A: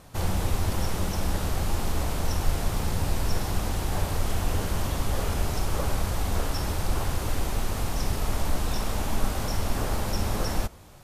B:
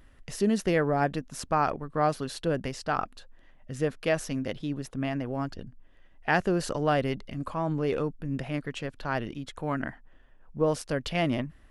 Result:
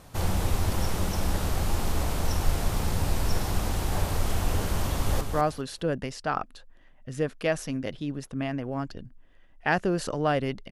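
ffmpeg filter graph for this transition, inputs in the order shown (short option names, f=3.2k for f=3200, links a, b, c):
-filter_complex "[0:a]apad=whole_dur=10.71,atrim=end=10.71,atrim=end=5.212[a];[1:a]atrim=start=1.828:end=7.33[b];[a][b]acrossfade=d=0.004:c1=hsin:c2=hsin,asplit=2[c][d];[d]afade=t=in:st=4.86:d=0.01,afade=t=out:st=5.21:d=0.01,aecho=0:1:200|400|600:0.473151|0.0946303|0.0189261[e];[c][e]amix=inputs=2:normalize=0"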